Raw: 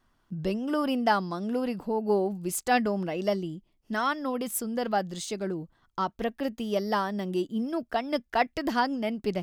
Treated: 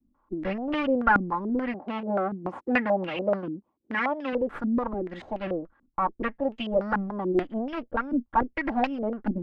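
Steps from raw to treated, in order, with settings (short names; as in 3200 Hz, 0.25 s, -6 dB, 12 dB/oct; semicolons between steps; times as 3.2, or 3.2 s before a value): minimum comb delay 3.6 ms; 1.74–4.33 HPF 130 Hz 12 dB/oct; stepped low-pass 6.9 Hz 260–2800 Hz; gain -1 dB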